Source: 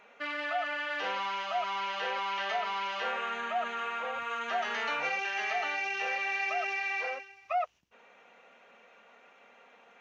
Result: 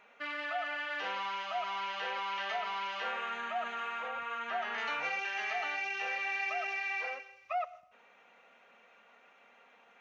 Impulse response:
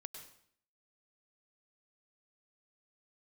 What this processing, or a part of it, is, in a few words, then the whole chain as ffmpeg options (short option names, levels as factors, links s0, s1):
filtered reverb send: -filter_complex "[0:a]asplit=2[s0][s1];[s1]highpass=f=440:w=0.5412,highpass=f=440:w=1.3066,lowpass=4800[s2];[1:a]atrim=start_sample=2205[s3];[s2][s3]afir=irnorm=-1:irlink=0,volume=0.473[s4];[s0][s4]amix=inputs=2:normalize=0,asettb=1/sr,asplit=3[s5][s6][s7];[s5]atrim=end=4.084[s8];[s6]atrim=start=4.08:end=4.78,asetpts=PTS-STARTPTS,afade=t=in:d=0.004:c=qsin,afade=t=out:st=0.696:d=0.004:c=qsin,acrossover=split=3300[s9][s10];[s10]acompressor=threshold=0.00178:ratio=4:attack=1:release=60[s11];[s9][s11]amix=inputs=2:normalize=0[s12];[s7]atrim=start=4.776[s13];[s8][s12]acrossfade=d=0.004:c1=hsin:c2=qsin[s14];[s14][s13]acrossfade=d=0.004:c1=qsin:c2=hsin,volume=0.596"